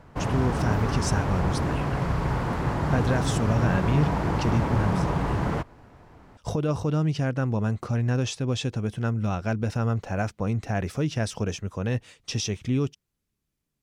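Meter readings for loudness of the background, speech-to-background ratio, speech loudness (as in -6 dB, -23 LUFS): -27.0 LUFS, -1.0 dB, -28.0 LUFS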